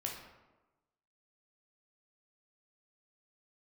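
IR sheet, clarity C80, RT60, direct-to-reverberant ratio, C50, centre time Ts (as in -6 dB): 7.0 dB, 1.1 s, -0.5 dB, 4.0 dB, 41 ms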